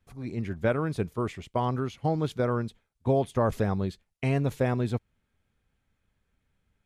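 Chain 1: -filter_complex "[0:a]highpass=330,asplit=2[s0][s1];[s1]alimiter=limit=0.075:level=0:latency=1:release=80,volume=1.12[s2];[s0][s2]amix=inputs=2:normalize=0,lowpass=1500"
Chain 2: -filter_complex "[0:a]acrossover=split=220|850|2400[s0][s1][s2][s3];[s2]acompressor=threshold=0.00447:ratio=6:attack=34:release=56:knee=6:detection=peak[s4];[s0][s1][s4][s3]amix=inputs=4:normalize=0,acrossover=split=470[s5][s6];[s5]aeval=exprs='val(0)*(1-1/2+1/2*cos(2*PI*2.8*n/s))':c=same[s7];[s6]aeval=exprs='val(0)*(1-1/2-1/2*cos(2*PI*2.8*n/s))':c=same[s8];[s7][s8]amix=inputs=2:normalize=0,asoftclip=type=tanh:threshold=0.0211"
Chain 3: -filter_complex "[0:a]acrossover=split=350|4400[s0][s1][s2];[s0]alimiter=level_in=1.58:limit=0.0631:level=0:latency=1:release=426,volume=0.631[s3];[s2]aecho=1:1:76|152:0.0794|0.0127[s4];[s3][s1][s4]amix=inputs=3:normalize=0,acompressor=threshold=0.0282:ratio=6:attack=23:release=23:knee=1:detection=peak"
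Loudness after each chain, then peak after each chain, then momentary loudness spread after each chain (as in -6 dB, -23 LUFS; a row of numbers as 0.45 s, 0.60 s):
-28.0 LUFS, -40.5 LUFS, -33.5 LUFS; -11.0 dBFS, -33.5 dBFS, -16.0 dBFS; 10 LU, 5 LU, 6 LU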